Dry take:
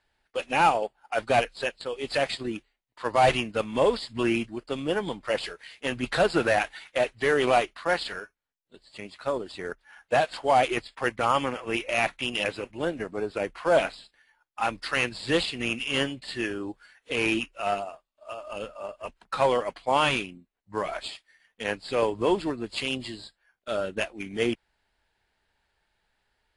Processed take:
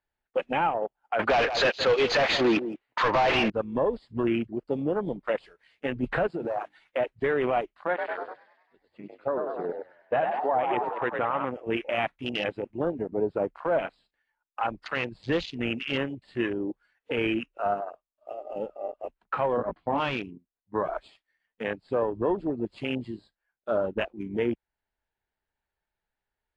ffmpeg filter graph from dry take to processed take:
-filter_complex "[0:a]asettb=1/sr,asplit=3[a][b][c];[a]atrim=end=1.194[d];[b]atrim=start=1.19:end=3.5,asetpts=PTS-STARTPTS,afade=t=in:d=0.004:c=qsin,afade=t=out:st=2.306:d=0.004:c=qsin,asplit=2[e][f];[f]highpass=f=720:p=1,volume=32dB,asoftclip=type=tanh:threshold=-9dB[g];[e][g]amix=inputs=2:normalize=0,lowpass=f=6.7k:p=1,volume=-6dB,adynamicsmooth=sensitivity=8:basefreq=3.5k,aecho=1:1:169:0.2,atrim=end_sample=101871[h];[c]atrim=start=3.496[i];[d][h]acrossfade=d=0.004:c1=hsin:c2=qsin[j];[j][i]acrossfade=d=0.004:c1=qsin:c2=hsin,asettb=1/sr,asplit=3[k][l][m];[k]atrim=end=6.274[n];[l]atrim=start=6.27:end=6.78,asetpts=PTS-STARTPTS,afade=t=in:d=0.004:c=qsin,afade=t=out:st=0.506:d=0.004:c=qsin,highpass=120,bandreject=f=50:t=h:w=6,bandreject=f=100:t=h:w=6,bandreject=f=150:t=h:w=6,bandreject=f=200:t=h:w=6,bandreject=f=250:t=h:w=6,bandreject=f=300:t=h:w=6,bandreject=f=350:t=h:w=6,acompressor=threshold=-26dB:ratio=12:attack=3.2:release=140:knee=1:detection=peak[o];[m]atrim=start=6.776[p];[n][o]acrossfade=d=0.004:c1=hsin:c2=qsin[q];[q][p]acrossfade=d=0.004:c1=qsin:c2=hsin,asettb=1/sr,asplit=3[r][s][t];[r]atrim=end=7.884[u];[s]atrim=start=7.88:end=11.45,asetpts=PTS-STARTPTS,afade=t=in:d=0.004:c=qsin,afade=t=out:st=3.566:d=0.004:c=qsin,bass=f=250:g=-4,treble=f=4k:g=-13,asplit=9[v][w][x][y][z][aa][ab][ac][ad];[w]adelay=99,afreqshift=54,volume=-5.5dB[ae];[x]adelay=198,afreqshift=108,volume=-9.9dB[af];[y]adelay=297,afreqshift=162,volume=-14.4dB[ag];[z]adelay=396,afreqshift=216,volume=-18.8dB[ah];[aa]adelay=495,afreqshift=270,volume=-23.2dB[ai];[ab]adelay=594,afreqshift=324,volume=-27.7dB[aj];[ac]adelay=693,afreqshift=378,volume=-32.1dB[ak];[ad]adelay=792,afreqshift=432,volume=-36.6dB[al];[v][ae][af][ag][ah][ai][aj][ak][al]amix=inputs=9:normalize=0,atrim=end_sample=157437[am];[t]atrim=start=11.446[an];[u][am]acrossfade=d=0.004:c1=hsin:c2=qsin[ao];[ao][an]acrossfade=d=0.004:c1=qsin:c2=hsin,asettb=1/sr,asplit=3[ap][aq][ar];[ap]atrim=end=19.574[as];[aq]atrim=start=19.57:end=20,asetpts=PTS-STARTPTS,afade=t=in:d=0.004:c=qsin,afade=t=out:st=0.426:d=0.004:c=qsin,lowpass=f=2.3k:p=1,lowshelf=f=350:t=q:w=1.5:g=6,asplit=2[at][au];[au]adelay=18,volume=-3.5dB[av];[at][av]amix=inputs=2:normalize=0,atrim=end_sample=18963[aw];[ar]atrim=start=19.996[ax];[as][aw]acrossfade=d=0.004:c1=hsin:c2=qsin[ay];[ay][ax]acrossfade=d=0.004:c1=qsin:c2=hsin,afwtdn=0.0282,lowpass=f=1.9k:p=1,alimiter=limit=-21dB:level=0:latency=1:release=358,volume=4.5dB"

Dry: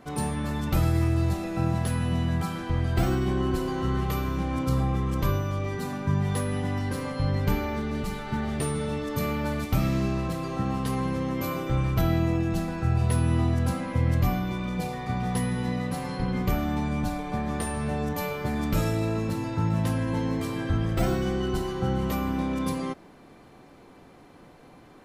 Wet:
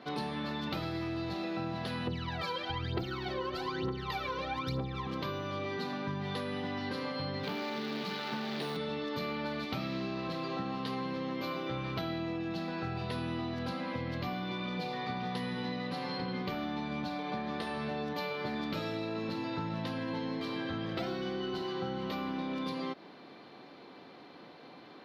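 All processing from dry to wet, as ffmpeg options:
-filter_complex "[0:a]asettb=1/sr,asplit=3[a][b][c];[a]atrim=end=2.074[d];[b]atrim=start=2.07:end=5.07,asetpts=PTS-STARTPTS,afade=t=in:d=0.004:c=qsin,afade=t=out:st=2.996:d=0.004:c=qsin,aecho=1:1:2.2:0.45,atrim=end_sample=132300,aphaser=in_gain=1:out_gain=1:delay=2.1:decay=0.78:speed=1.1:type=triangular[e];[c]atrim=start=5.066[f];[d][e]acrossfade=d=0.004:c1=hsin:c2=qsin[g];[g][f]acrossfade=d=0.004:c1=qsin:c2=hsin,asettb=1/sr,asplit=3[h][i][j];[h]atrim=end=7.434[k];[i]atrim=start=7.43:end=8.77,asetpts=PTS-STARTPTS,afade=t=in:d=0.004:c=qsin,afade=t=out:st=1.336:d=0.004:c=qsin,highpass=f=130:w=0.5412,highpass=f=130:w=1.3066,asoftclip=type=hard:threshold=-26.5dB,acrusher=bits=7:dc=4:mix=0:aa=0.000001[l];[j]atrim=start=8.766[m];[k][l]acrossfade=d=0.004:c1=hsin:c2=qsin[n];[n][m]acrossfade=d=0.004:c1=qsin:c2=hsin,highpass=210,highshelf=f=5.9k:t=q:w=3:g=-13,acompressor=threshold=-33dB:ratio=6"

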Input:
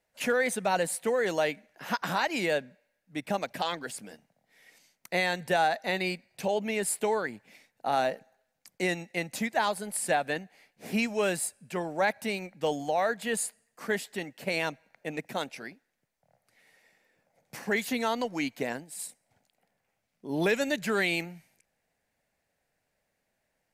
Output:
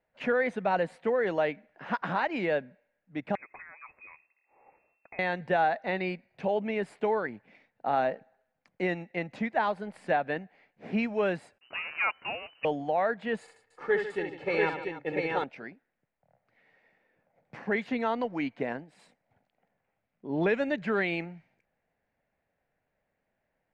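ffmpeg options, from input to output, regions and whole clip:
-filter_complex "[0:a]asettb=1/sr,asplit=3[a][b][c];[a]atrim=end=3.354[d];[b]atrim=start=3.35:end=5.19,asetpts=PTS-STARTPTS,afade=t=in:d=0.004:c=qsin,afade=t=out:st=1.836:d=0.004:c=qsin,asubboost=boost=10.5:cutoff=160,acompressor=threshold=-40dB:ratio=10:attack=3.2:release=140:knee=1:detection=peak,lowpass=f=2.3k:t=q:w=0.5098,lowpass=f=2.3k:t=q:w=0.6013,lowpass=f=2.3k:t=q:w=0.9,lowpass=f=2.3k:t=q:w=2.563,afreqshift=-2700[e];[c]atrim=start=5.186[f];[d][e]acrossfade=d=0.004:c1=hsin:c2=qsin[g];[g][f]acrossfade=d=0.004:c1=qsin:c2=hsin,asettb=1/sr,asplit=3[h][i][j];[h]atrim=end=11.584[k];[i]atrim=start=11.58:end=12.65,asetpts=PTS-STARTPTS,afade=t=in:d=0.004:c=qsin,afade=t=out:st=1.066:d=0.004:c=qsin,acrusher=bits=7:dc=4:mix=0:aa=0.000001,lowpass=f=2.6k:t=q:w=0.5098,lowpass=f=2.6k:t=q:w=0.6013,lowpass=f=2.6k:t=q:w=0.9,lowpass=f=2.6k:t=q:w=2.563,afreqshift=-3000,highpass=47[l];[j]atrim=start=12.646[m];[k][l]acrossfade=d=0.004:c1=hsin:c2=qsin[n];[n][m]acrossfade=d=0.004:c1=qsin:c2=hsin,asettb=1/sr,asplit=3[o][p][q];[o]atrim=end=13.414[r];[p]atrim=start=13.41:end=15.44,asetpts=PTS-STARTPTS,afade=t=in:d=0.004:c=qsin,afade=t=out:st=2.026:d=0.004:c=qsin,aecho=1:1:2.3:0.75,atrim=end_sample=89523,aecho=1:1:67|148|292|689:0.473|0.237|0.211|0.708,atrim=end_sample=89523[s];[q]atrim=start=15.436[t];[r][s]acrossfade=d=0.004:c1=hsin:c2=qsin[u];[u][t]acrossfade=d=0.004:c1=qsin:c2=hsin,lowpass=2.5k,aemphasis=mode=reproduction:type=cd"

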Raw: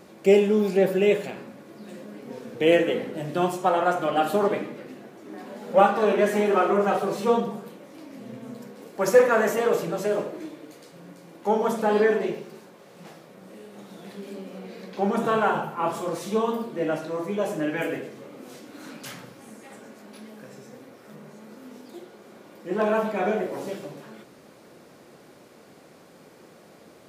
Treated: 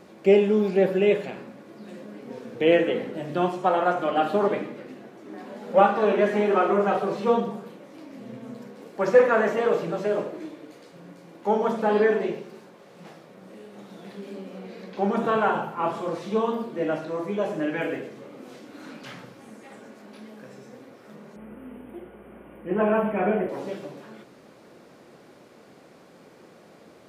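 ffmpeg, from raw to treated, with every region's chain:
-filter_complex "[0:a]asettb=1/sr,asplit=3[a][b][c];[a]atrim=end=21.364[d];[b]atrim=start=21.36:end=23.49,asetpts=PTS-STARTPTS,afade=t=in:d=0.004:c=qsin,afade=t=out:st=2.126:d=0.004:c=qsin,asuperstop=centerf=5400:order=12:qfactor=0.93,lowshelf=f=140:g=11,aeval=exprs='val(0)+0.00141*(sin(2*PI*60*n/s)+sin(2*PI*2*60*n/s)/2+sin(2*PI*3*60*n/s)/3+sin(2*PI*4*60*n/s)/4+sin(2*PI*5*60*n/s)/5)':c=same[e];[c]atrim=start=23.486[f];[d][e]acrossfade=d=0.004:c1=hsin:c2=qsin[g];[g][f]acrossfade=d=0.004:c1=qsin:c2=hsin,highshelf=f=7.6k:g=-9,acrossover=split=4800[h][i];[i]acompressor=threshold=-58dB:ratio=4:attack=1:release=60[j];[h][j]amix=inputs=2:normalize=0,bandreject=f=50:t=h:w=6,bandreject=f=100:t=h:w=6,bandreject=f=150:t=h:w=6"

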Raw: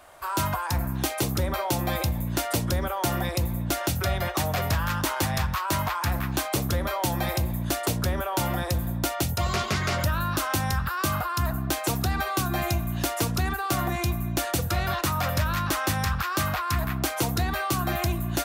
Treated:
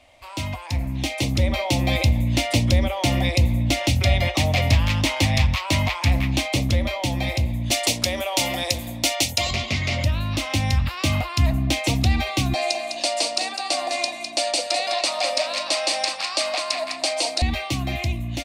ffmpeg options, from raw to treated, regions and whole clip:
-filter_complex "[0:a]asettb=1/sr,asplit=3[a][b][c];[a]atrim=end=7.714[d];[b]atrim=start=7.71:end=9.51,asetpts=PTS-STARTPTS,afade=t=in:d=0.004:c=qsin,afade=t=out:st=1.796:d=0.004:c=qsin,highpass=57,bass=f=250:g=-14,treble=f=4k:g=8,acontrast=32[e];[c]atrim=start=9.506[f];[d][e]acrossfade=d=0.004:c1=hsin:c2=qsin[g];[g][f]acrossfade=d=0.004:c1=qsin:c2=hsin,asettb=1/sr,asplit=3[h][i][j];[h]atrim=end=12.544[k];[i]atrim=start=12.54:end=17.42,asetpts=PTS-STARTPTS,afade=t=in:d=0.004:c=qsin,afade=t=out:st=4.876:d=0.004:c=qsin,highpass=f=420:w=0.5412,highpass=f=420:w=1.3066,equalizer=f=430:t=q:w=4:g=-4,equalizer=f=630:t=q:w=4:g=7,equalizer=f=2.1k:t=q:w=4:g=-6,equalizer=f=3.2k:t=q:w=4:g=-4,equalizer=f=4.6k:t=q:w=4:g=9,equalizer=f=8.6k:t=q:w=4:g=10,lowpass=f=9.8k:w=0.5412,lowpass=f=9.8k:w=1.3066,aecho=1:1:205:0.447,atrim=end_sample=215208[l];[j]atrim=start=17.416[m];[k][l]acrossfade=d=0.004:c1=hsin:c2=qsin[n];[n][m]acrossfade=d=0.004:c1=qsin:c2=hsin,dynaudnorm=f=270:g=9:m=8dB,firequalizer=gain_entry='entry(120,0);entry(170,-11);entry(250,3);entry(390,-13);entry(550,-3);entry(1500,-20);entry(2100,3);entry(14000,-20)':delay=0.05:min_phase=1,volume=1.5dB"

